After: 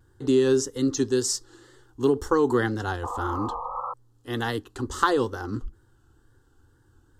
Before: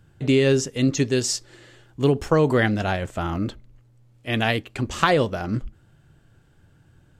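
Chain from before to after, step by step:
sound drawn into the spectrogram noise, 0:03.03–0:03.94, 480–1,300 Hz −30 dBFS
phaser with its sweep stopped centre 630 Hz, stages 6
tape wow and flutter 65 cents

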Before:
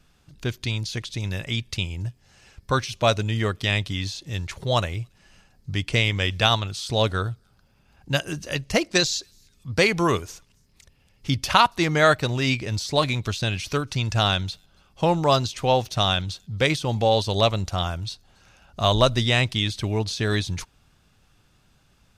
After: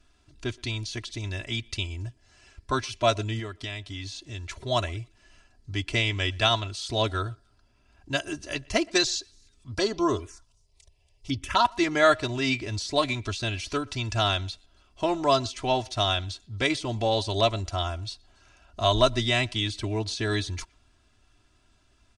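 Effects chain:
0:03.39–0:04.48: downward compressor 4 to 1, threshold −29 dBFS, peak gain reduction 9.5 dB
0:09.74–0:11.65: phaser swept by the level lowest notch 240 Hz, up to 2,300 Hz, full sweep at −17 dBFS
far-end echo of a speakerphone 120 ms, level −26 dB
downsampling to 22,050 Hz
comb filter 3 ms, depth 80%
level −5 dB

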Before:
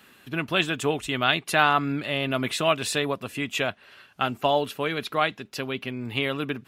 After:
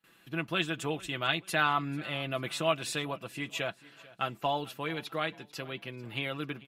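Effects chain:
noise gate with hold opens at −45 dBFS
comb filter 6 ms, depth 54%
on a send: repeating echo 442 ms, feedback 39%, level −21 dB
on the sum: level −8.5 dB

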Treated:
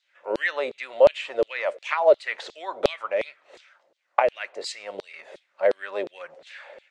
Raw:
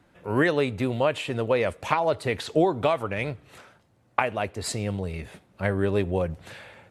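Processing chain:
loudspeaker in its box 130–7,300 Hz, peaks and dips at 350 Hz +4 dB, 570 Hz +10 dB, 2,000 Hz +3 dB
auto-filter high-pass saw down 2.8 Hz 390–4,200 Hz
level −4 dB

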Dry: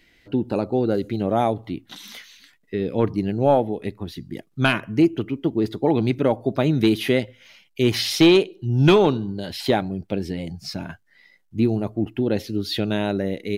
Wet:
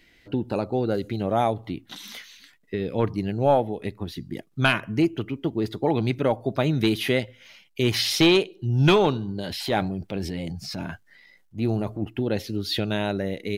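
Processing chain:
dynamic equaliser 290 Hz, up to −5 dB, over −29 dBFS, Q 0.8
0:09.41–0:12.02: transient designer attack −6 dB, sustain +5 dB

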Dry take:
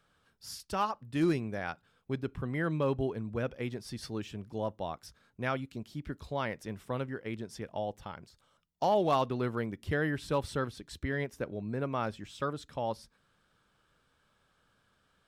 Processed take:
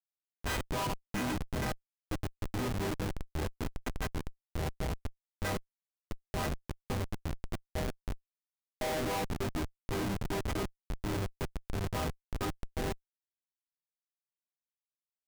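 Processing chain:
every partial snapped to a pitch grid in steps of 4 semitones
phase-vocoder pitch shift with formants kept −6 semitones
comparator with hysteresis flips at −30 dBFS
level +1.5 dB

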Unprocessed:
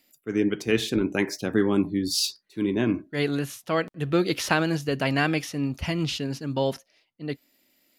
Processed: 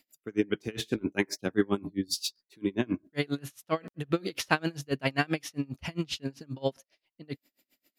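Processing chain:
tremolo with a sine in dB 7.5 Hz, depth 30 dB

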